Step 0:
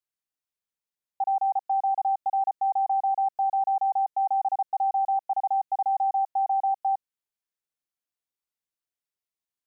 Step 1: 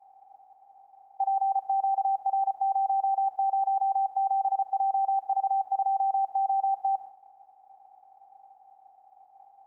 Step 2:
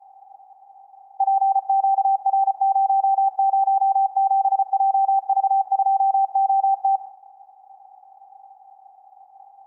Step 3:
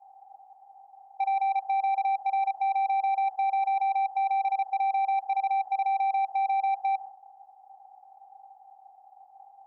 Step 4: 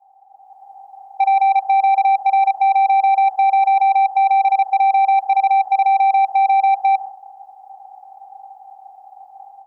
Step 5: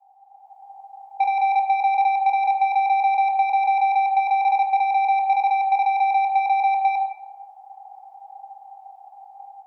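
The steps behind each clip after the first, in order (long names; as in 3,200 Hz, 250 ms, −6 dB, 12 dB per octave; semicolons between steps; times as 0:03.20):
compressor on every frequency bin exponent 0.2; downward expander −34 dBFS; level −2 dB
parametric band 850 Hz +8 dB 0.98 octaves
soft clipping −17 dBFS, distortion −17 dB; level −4.5 dB
automatic gain control gain up to 12 dB
Chebyshev high-pass with heavy ripple 650 Hz, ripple 3 dB; rectangular room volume 240 cubic metres, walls mixed, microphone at 0.62 metres; level −2 dB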